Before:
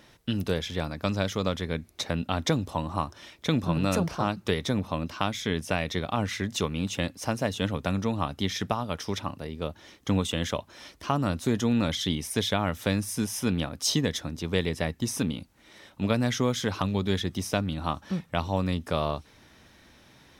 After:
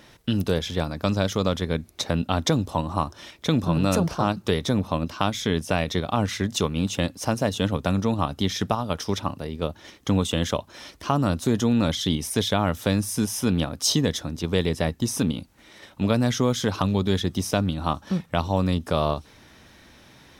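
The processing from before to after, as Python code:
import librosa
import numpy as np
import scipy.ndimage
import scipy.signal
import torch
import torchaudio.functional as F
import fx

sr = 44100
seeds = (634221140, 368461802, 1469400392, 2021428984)

p1 = fx.dynamic_eq(x, sr, hz=2100.0, q=1.7, threshold_db=-49.0, ratio=4.0, max_db=-5)
p2 = fx.level_steps(p1, sr, step_db=10)
y = p1 + F.gain(torch.from_numpy(p2), 1.0).numpy()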